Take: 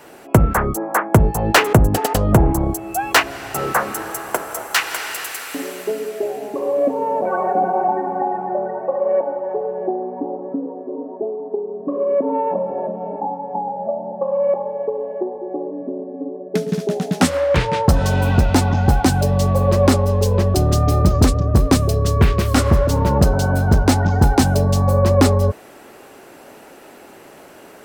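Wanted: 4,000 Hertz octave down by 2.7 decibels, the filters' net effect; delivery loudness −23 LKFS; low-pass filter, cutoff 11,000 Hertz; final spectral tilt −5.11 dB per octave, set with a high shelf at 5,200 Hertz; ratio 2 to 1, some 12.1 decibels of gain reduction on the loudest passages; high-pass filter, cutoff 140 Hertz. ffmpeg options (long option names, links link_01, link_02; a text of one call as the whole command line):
ffmpeg -i in.wav -af "highpass=140,lowpass=11000,equalizer=frequency=4000:width_type=o:gain=-7,highshelf=frequency=5200:gain=7,acompressor=threshold=-34dB:ratio=2,volume=7.5dB" out.wav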